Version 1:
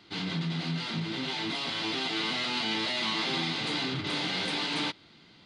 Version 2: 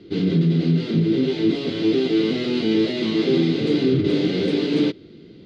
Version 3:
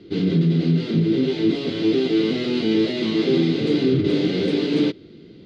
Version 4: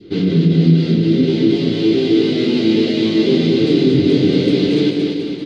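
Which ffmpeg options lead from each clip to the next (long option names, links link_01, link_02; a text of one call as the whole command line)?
ffmpeg -i in.wav -af "lowpass=5700,lowshelf=frequency=610:width_type=q:width=3:gain=13" out.wav
ffmpeg -i in.wav -af anull out.wav
ffmpeg -i in.wav -af "aecho=1:1:230|437|623.3|791|941.9:0.631|0.398|0.251|0.158|0.1,adynamicequalizer=threshold=0.0141:dfrequency=1200:dqfactor=0.85:tfrequency=1200:tqfactor=0.85:attack=5:release=100:ratio=0.375:range=3:mode=cutabove:tftype=bell,volume=4.5dB" out.wav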